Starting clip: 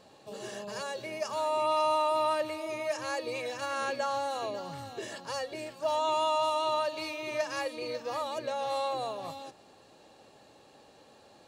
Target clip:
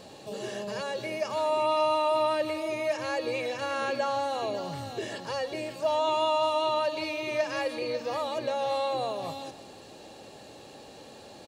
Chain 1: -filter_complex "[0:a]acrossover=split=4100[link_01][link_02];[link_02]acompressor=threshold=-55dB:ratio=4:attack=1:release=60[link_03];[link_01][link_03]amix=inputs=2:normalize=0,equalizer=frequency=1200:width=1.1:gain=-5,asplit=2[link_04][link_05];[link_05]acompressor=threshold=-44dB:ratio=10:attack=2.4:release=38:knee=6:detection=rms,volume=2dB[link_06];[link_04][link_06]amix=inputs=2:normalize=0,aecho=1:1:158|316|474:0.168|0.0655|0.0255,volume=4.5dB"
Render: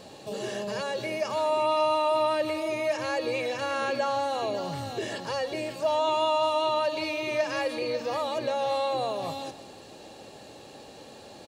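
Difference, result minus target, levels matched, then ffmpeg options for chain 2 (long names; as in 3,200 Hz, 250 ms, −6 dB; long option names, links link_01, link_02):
downward compressor: peak gain reduction −9.5 dB
-filter_complex "[0:a]acrossover=split=4100[link_01][link_02];[link_02]acompressor=threshold=-55dB:ratio=4:attack=1:release=60[link_03];[link_01][link_03]amix=inputs=2:normalize=0,equalizer=frequency=1200:width=1.1:gain=-5,asplit=2[link_04][link_05];[link_05]acompressor=threshold=-54.5dB:ratio=10:attack=2.4:release=38:knee=6:detection=rms,volume=2dB[link_06];[link_04][link_06]amix=inputs=2:normalize=0,aecho=1:1:158|316|474:0.168|0.0655|0.0255,volume=4.5dB"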